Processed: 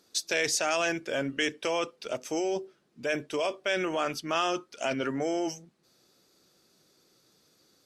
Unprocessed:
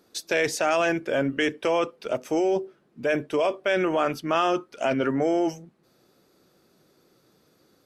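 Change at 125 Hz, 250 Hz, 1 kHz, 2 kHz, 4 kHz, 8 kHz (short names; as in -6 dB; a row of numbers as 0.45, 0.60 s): -7.0, -7.0, -5.5, -3.0, +1.5, +4.0 dB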